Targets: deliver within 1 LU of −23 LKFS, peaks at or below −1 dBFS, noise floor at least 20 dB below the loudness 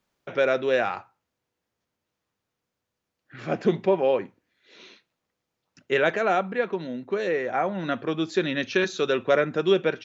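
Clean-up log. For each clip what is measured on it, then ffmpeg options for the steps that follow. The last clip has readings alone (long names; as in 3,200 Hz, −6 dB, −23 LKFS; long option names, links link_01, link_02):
integrated loudness −25.0 LKFS; sample peak −8.5 dBFS; target loudness −23.0 LKFS
→ -af "volume=2dB"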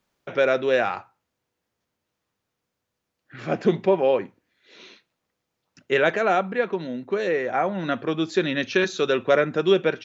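integrated loudness −23.0 LKFS; sample peak −6.5 dBFS; background noise floor −81 dBFS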